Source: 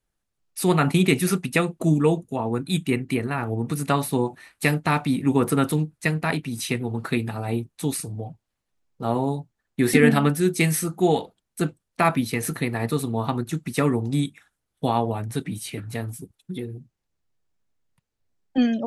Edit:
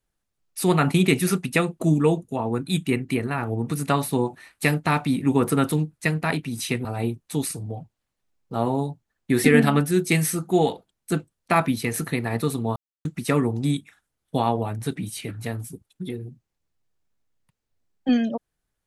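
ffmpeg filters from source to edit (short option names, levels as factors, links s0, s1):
-filter_complex "[0:a]asplit=4[s0][s1][s2][s3];[s0]atrim=end=6.852[s4];[s1]atrim=start=7.338:end=13.25,asetpts=PTS-STARTPTS,afade=t=out:st=5.908:d=0.004:c=hsin[s5];[s2]atrim=start=13.25:end=13.54,asetpts=PTS-STARTPTS,volume=0[s6];[s3]atrim=start=13.54,asetpts=PTS-STARTPTS,afade=t=in:d=0.004:c=hsin[s7];[s5][s6][s7]concat=n=3:v=0:a=1[s8];[s4][s8]acrossfade=d=0.004:c1=hsin:c2=hsin"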